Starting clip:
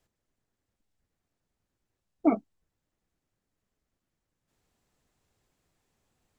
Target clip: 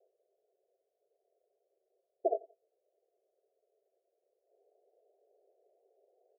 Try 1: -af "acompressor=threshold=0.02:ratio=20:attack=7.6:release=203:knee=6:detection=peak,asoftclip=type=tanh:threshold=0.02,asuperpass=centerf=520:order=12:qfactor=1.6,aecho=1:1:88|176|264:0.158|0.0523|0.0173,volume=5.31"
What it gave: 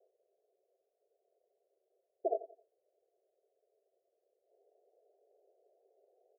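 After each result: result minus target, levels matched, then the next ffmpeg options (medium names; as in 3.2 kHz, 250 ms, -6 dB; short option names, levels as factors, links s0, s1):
saturation: distortion +11 dB; echo-to-direct +7.5 dB
-af "acompressor=threshold=0.02:ratio=20:attack=7.6:release=203:knee=6:detection=peak,asoftclip=type=tanh:threshold=0.0531,asuperpass=centerf=520:order=12:qfactor=1.6,aecho=1:1:88|176|264:0.158|0.0523|0.0173,volume=5.31"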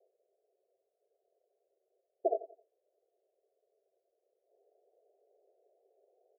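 echo-to-direct +7.5 dB
-af "acompressor=threshold=0.02:ratio=20:attack=7.6:release=203:knee=6:detection=peak,asoftclip=type=tanh:threshold=0.0531,asuperpass=centerf=520:order=12:qfactor=1.6,aecho=1:1:88|176:0.0668|0.0221,volume=5.31"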